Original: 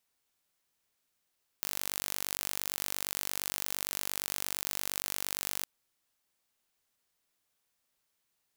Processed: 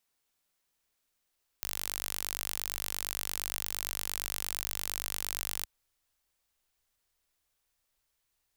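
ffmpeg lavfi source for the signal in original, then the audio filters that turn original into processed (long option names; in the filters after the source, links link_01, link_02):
-f lavfi -i "aevalsrc='0.447*eq(mod(n,906),0)':duration=4.01:sample_rate=44100"
-af "asubboost=boost=6.5:cutoff=69"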